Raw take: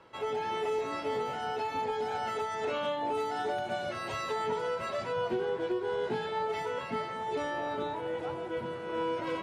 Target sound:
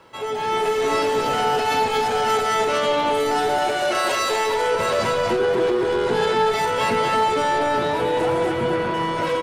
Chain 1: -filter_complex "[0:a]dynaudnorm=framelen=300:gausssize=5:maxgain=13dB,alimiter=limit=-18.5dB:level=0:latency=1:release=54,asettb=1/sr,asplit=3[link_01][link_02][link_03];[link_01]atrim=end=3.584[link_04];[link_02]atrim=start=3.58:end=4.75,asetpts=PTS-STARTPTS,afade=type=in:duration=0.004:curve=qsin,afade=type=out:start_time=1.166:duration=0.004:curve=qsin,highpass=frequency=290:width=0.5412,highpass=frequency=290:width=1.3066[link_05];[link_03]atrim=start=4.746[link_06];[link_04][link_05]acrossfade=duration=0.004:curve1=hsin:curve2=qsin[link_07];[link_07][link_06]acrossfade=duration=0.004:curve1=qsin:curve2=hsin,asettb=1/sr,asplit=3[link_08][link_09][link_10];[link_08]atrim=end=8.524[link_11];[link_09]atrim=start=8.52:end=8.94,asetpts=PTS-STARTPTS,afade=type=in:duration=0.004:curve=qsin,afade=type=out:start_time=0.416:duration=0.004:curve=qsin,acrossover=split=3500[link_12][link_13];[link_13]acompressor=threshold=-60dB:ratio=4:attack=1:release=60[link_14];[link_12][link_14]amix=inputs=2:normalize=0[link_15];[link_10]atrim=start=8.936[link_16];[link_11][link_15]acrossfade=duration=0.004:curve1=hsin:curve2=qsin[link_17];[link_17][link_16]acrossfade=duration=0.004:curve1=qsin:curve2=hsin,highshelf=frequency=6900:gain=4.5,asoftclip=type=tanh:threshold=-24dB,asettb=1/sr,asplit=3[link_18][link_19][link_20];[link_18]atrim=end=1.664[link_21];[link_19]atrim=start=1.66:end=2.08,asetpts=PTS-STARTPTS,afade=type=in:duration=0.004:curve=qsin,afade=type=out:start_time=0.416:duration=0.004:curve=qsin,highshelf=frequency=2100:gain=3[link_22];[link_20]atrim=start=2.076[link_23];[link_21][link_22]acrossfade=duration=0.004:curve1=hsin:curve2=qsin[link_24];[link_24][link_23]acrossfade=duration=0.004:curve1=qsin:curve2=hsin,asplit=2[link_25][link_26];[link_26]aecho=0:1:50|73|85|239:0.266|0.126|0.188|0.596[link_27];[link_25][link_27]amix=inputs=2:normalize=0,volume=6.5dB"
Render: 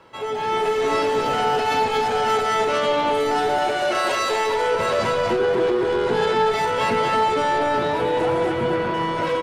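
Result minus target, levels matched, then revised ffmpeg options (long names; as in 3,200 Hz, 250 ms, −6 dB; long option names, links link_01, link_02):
8,000 Hz band −3.5 dB
-filter_complex "[0:a]dynaudnorm=framelen=300:gausssize=5:maxgain=13dB,alimiter=limit=-18.5dB:level=0:latency=1:release=54,asettb=1/sr,asplit=3[link_01][link_02][link_03];[link_01]atrim=end=3.584[link_04];[link_02]atrim=start=3.58:end=4.75,asetpts=PTS-STARTPTS,afade=type=in:duration=0.004:curve=qsin,afade=type=out:start_time=1.166:duration=0.004:curve=qsin,highpass=frequency=290:width=0.5412,highpass=frequency=290:width=1.3066[link_05];[link_03]atrim=start=4.746[link_06];[link_04][link_05]acrossfade=duration=0.004:curve1=hsin:curve2=qsin[link_07];[link_07][link_06]acrossfade=duration=0.004:curve1=qsin:curve2=hsin,asettb=1/sr,asplit=3[link_08][link_09][link_10];[link_08]atrim=end=8.524[link_11];[link_09]atrim=start=8.52:end=8.94,asetpts=PTS-STARTPTS,afade=type=in:duration=0.004:curve=qsin,afade=type=out:start_time=0.416:duration=0.004:curve=qsin,acrossover=split=3500[link_12][link_13];[link_13]acompressor=threshold=-60dB:ratio=4:attack=1:release=60[link_14];[link_12][link_14]amix=inputs=2:normalize=0[link_15];[link_10]atrim=start=8.936[link_16];[link_11][link_15]acrossfade=duration=0.004:curve1=hsin:curve2=qsin[link_17];[link_17][link_16]acrossfade=duration=0.004:curve1=qsin:curve2=hsin,highshelf=frequency=6900:gain=12.5,asoftclip=type=tanh:threshold=-24dB,asettb=1/sr,asplit=3[link_18][link_19][link_20];[link_18]atrim=end=1.664[link_21];[link_19]atrim=start=1.66:end=2.08,asetpts=PTS-STARTPTS,afade=type=in:duration=0.004:curve=qsin,afade=type=out:start_time=0.416:duration=0.004:curve=qsin,highshelf=frequency=2100:gain=3[link_22];[link_20]atrim=start=2.076[link_23];[link_21][link_22]acrossfade=duration=0.004:curve1=hsin:curve2=qsin[link_24];[link_24][link_23]acrossfade=duration=0.004:curve1=qsin:curve2=hsin,asplit=2[link_25][link_26];[link_26]aecho=0:1:50|73|85|239:0.266|0.126|0.188|0.596[link_27];[link_25][link_27]amix=inputs=2:normalize=0,volume=6.5dB"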